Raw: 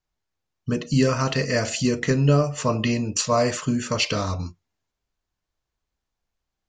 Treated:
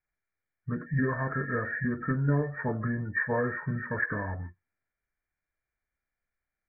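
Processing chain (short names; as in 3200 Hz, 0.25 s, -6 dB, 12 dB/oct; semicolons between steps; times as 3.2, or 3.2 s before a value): nonlinear frequency compression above 1600 Hz 4:1; formant shift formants -4 st; gain -8 dB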